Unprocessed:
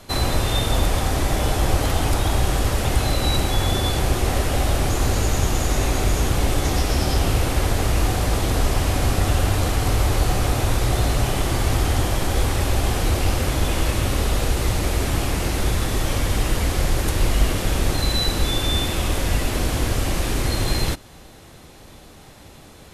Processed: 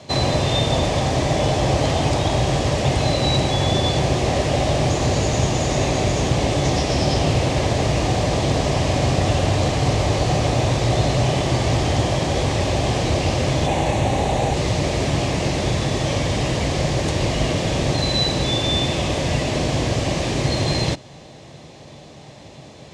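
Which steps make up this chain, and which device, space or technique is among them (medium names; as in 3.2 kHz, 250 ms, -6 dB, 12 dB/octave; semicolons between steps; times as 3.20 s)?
car door speaker (cabinet simulation 94–7100 Hz, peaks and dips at 140 Hz +8 dB, 610 Hz +6 dB, 1.4 kHz -10 dB); 13.66–14.54 s: graphic EQ with 31 bands 800 Hz +10 dB, 1.25 kHz -4 dB, 3.15 kHz -3 dB, 5 kHz -9 dB; trim +3 dB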